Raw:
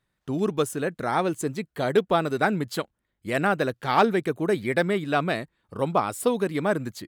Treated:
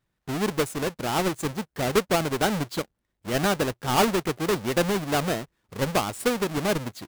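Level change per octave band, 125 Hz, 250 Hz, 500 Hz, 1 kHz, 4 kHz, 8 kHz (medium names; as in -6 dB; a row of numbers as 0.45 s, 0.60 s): +1.0 dB, -0.5 dB, -1.5 dB, -2.0 dB, +5.5 dB, +6.5 dB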